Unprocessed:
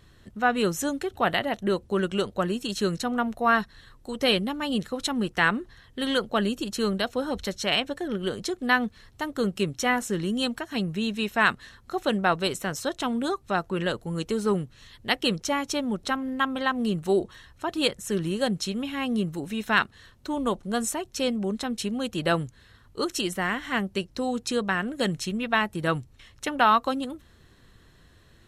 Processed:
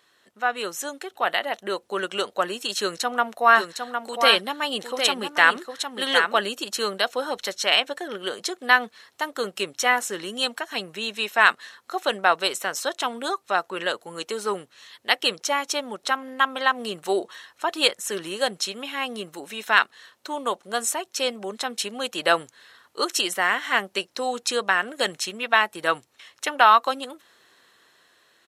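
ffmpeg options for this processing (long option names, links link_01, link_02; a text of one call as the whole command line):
ffmpeg -i in.wav -filter_complex "[0:a]asplit=3[link_01][link_02][link_03];[link_01]afade=type=out:start_time=3.55:duration=0.02[link_04];[link_02]aecho=1:1:758:0.501,afade=type=in:start_time=3.55:duration=0.02,afade=type=out:start_time=6.45:duration=0.02[link_05];[link_03]afade=type=in:start_time=6.45:duration=0.02[link_06];[link_04][link_05][link_06]amix=inputs=3:normalize=0,highpass=580,dynaudnorm=framelen=310:gausssize=11:maxgain=9dB" out.wav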